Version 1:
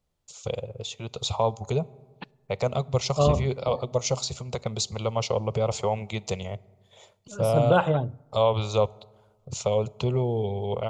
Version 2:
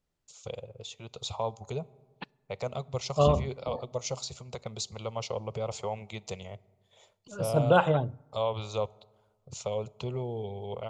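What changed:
first voice -7.0 dB; master: add low shelf 410 Hz -3 dB

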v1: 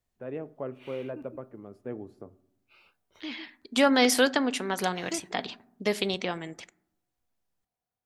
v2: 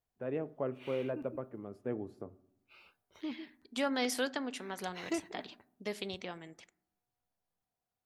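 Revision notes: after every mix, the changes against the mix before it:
second voice -11.5 dB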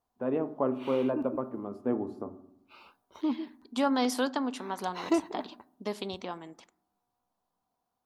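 first voice: send +9.5 dB; background +4.0 dB; master: add graphic EQ 125/250/1000/2000/4000 Hz -4/+8/+12/-6/+3 dB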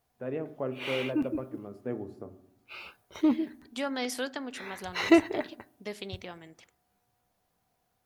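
background +12.0 dB; master: add graphic EQ 125/250/1000/2000/4000 Hz +4/-8/-12/+6/-3 dB

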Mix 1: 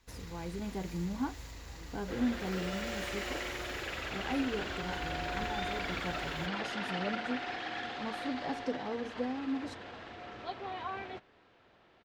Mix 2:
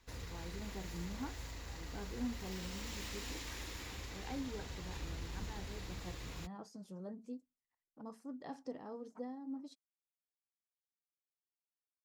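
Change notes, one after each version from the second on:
speech -9.0 dB; second sound: muted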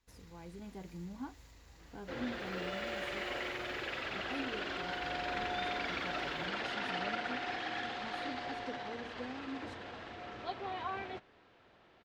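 first sound -11.5 dB; second sound: unmuted

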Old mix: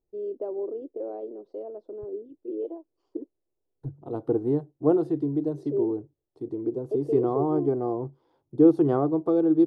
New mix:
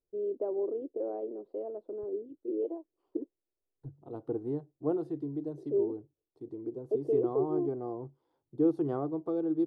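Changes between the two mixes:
first voice: add air absorption 340 m; second voice -9.5 dB

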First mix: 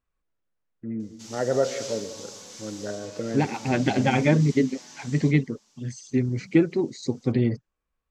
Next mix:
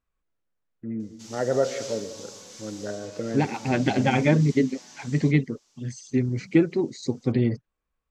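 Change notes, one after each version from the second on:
background: send off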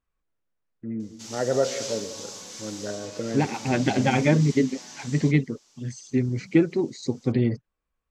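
background +5.0 dB

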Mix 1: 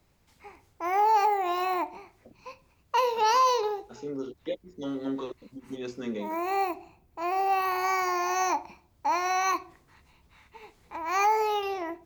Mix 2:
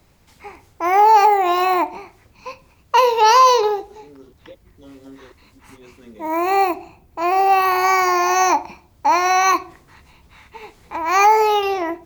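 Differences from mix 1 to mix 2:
speech -9.5 dB; background +11.0 dB

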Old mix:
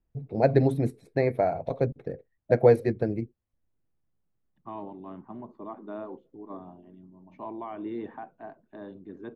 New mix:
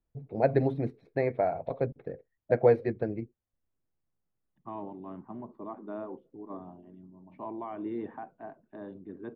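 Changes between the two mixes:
first voice: add low shelf 390 Hz -6.5 dB; master: add air absorption 280 m

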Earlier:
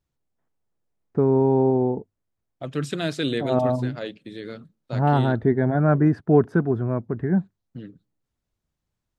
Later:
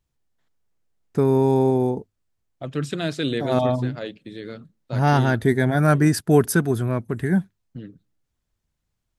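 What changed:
first voice: remove LPF 1100 Hz 12 dB/oct; master: add low shelf 78 Hz +6.5 dB

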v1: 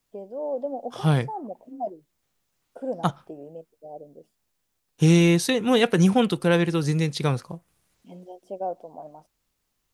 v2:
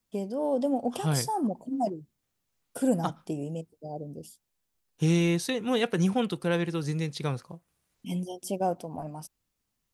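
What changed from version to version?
first voice: remove band-pass 600 Hz, Q 1.6; second voice -7.0 dB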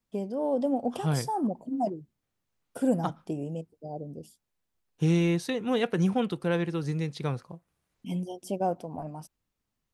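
master: add high shelf 3700 Hz -8 dB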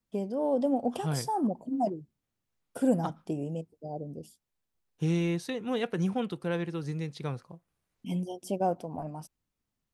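second voice -4.0 dB

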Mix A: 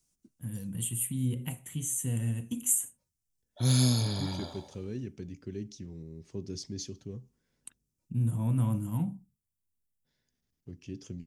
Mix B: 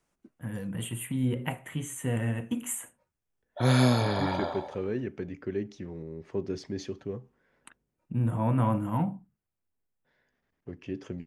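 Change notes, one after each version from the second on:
master: add EQ curve 110 Hz 0 dB, 240 Hz +4 dB, 580 Hz +14 dB, 1800 Hz +14 dB, 5700 Hz -8 dB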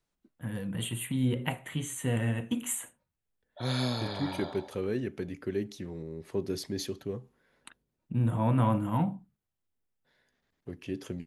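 second voice: remove LPF 5900 Hz 24 dB/oct; background -9.0 dB; master: add bell 4000 Hz +9 dB 0.68 oct

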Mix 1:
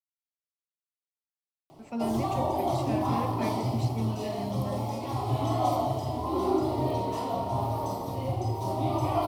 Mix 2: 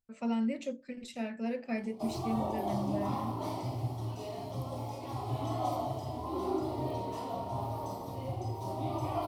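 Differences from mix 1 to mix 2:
speech: entry -1.70 s; background -7.0 dB

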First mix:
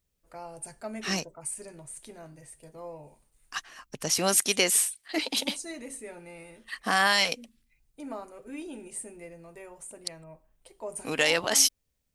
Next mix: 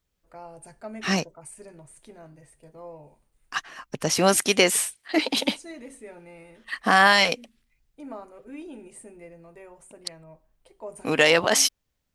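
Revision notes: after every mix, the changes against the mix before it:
second voice +8.0 dB; master: add high shelf 4000 Hz -10.5 dB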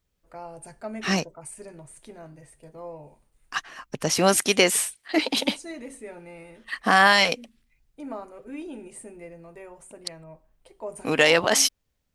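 first voice +3.0 dB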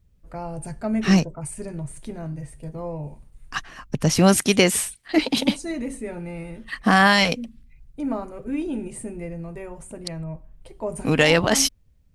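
first voice +5.0 dB; master: add tone controls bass +14 dB, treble 0 dB

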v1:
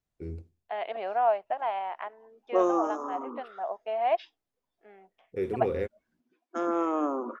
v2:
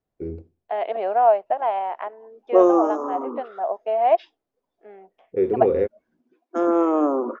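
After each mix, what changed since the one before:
first voice: add LPF 2900 Hz 6 dB/oct; master: add bell 440 Hz +10.5 dB 2.5 oct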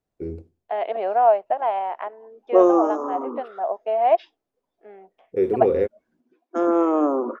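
first voice: remove LPF 2900 Hz 6 dB/oct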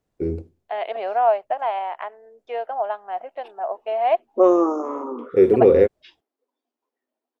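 first voice +6.5 dB; second voice: add tilt +3 dB/oct; background: entry +1.85 s

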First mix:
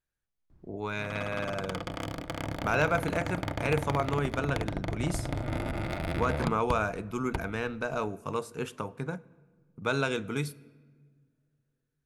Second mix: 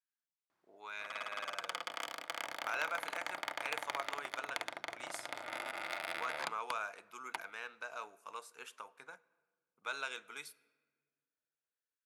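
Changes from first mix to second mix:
speech -7.5 dB; master: add HPF 1000 Hz 12 dB/oct

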